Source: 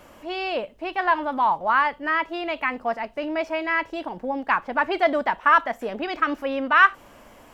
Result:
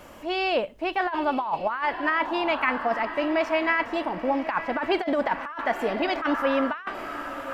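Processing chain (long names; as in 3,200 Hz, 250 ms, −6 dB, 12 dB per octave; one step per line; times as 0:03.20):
feedback delay with all-pass diffusion 986 ms, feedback 43%, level −13 dB
compressor whose output falls as the input rises −23 dBFS, ratio −0.5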